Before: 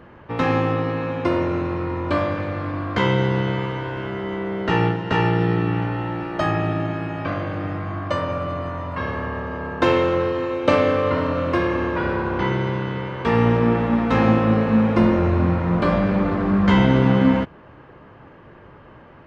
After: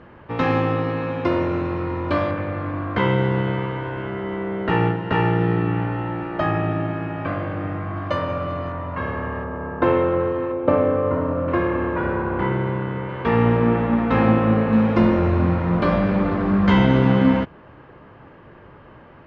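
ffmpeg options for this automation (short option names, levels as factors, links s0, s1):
-af "asetnsamples=n=441:p=0,asendcmd='2.31 lowpass f 2700;7.96 lowpass f 4400;8.72 lowpass f 2600;9.44 lowpass f 1600;10.52 lowpass f 1100;11.48 lowpass f 2000;13.09 lowpass f 3000;14.73 lowpass f 5300',lowpass=5100"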